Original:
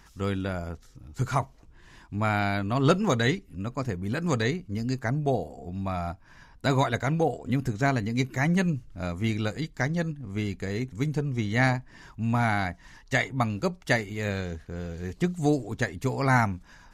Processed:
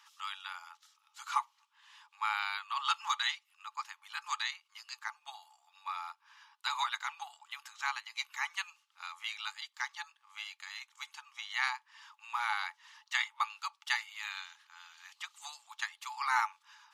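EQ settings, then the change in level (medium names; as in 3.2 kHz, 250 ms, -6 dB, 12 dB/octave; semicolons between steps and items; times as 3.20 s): rippled Chebyshev high-pass 830 Hz, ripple 9 dB; +2.0 dB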